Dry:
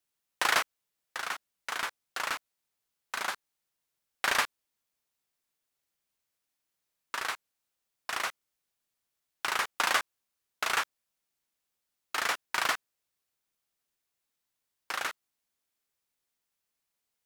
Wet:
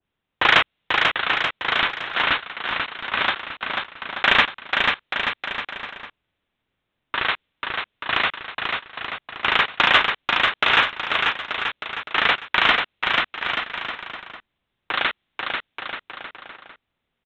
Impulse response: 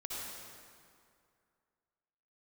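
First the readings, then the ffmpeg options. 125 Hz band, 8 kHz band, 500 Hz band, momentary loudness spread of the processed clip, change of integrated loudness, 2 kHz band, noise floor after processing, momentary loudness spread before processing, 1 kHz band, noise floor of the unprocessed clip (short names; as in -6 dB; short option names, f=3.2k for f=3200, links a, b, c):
n/a, under -10 dB, +12.5 dB, 15 LU, +10.5 dB, +14.0 dB, -79 dBFS, 12 LU, +11.5 dB, -85 dBFS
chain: -af "lowshelf=f=330:g=11,acontrast=64,aresample=8000,acrusher=bits=2:mode=log:mix=0:aa=0.000001,aresample=44100,asoftclip=type=tanh:threshold=-4dB,aecho=1:1:490|882|1196|1446|1647:0.631|0.398|0.251|0.158|0.1,adynamicequalizer=threshold=0.0158:dfrequency=1800:dqfactor=0.7:tfrequency=1800:tqfactor=0.7:attack=5:release=100:ratio=0.375:range=4:mode=boostabove:tftype=highshelf,volume=1dB"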